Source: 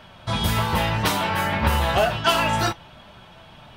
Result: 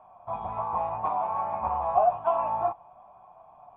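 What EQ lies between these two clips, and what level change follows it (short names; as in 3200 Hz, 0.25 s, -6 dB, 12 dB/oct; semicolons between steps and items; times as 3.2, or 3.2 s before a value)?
vocal tract filter a; +6.5 dB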